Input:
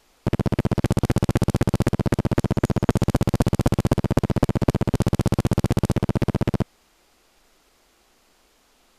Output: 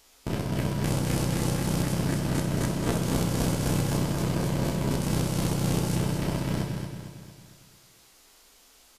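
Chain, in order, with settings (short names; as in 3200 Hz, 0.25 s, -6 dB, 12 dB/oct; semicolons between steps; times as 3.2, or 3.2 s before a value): stepped spectrum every 50 ms; high shelf 3200 Hz +11 dB; feedback echo 0.227 s, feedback 48%, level -7 dB; non-linear reverb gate 0.34 s falling, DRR 1 dB; gain -4 dB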